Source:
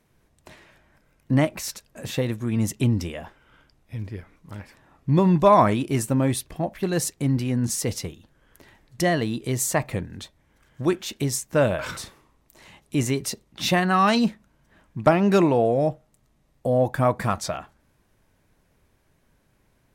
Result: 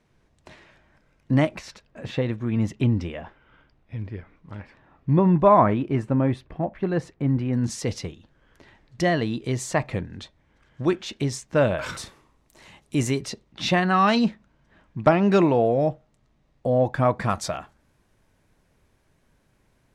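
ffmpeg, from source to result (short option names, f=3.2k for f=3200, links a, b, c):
-af "asetnsamples=n=441:p=0,asendcmd='1.59 lowpass f 3200;5.13 lowpass f 1900;7.53 lowpass f 5100;11.78 lowpass f 10000;13.21 lowpass f 5100;17.29 lowpass f 11000',lowpass=6.4k"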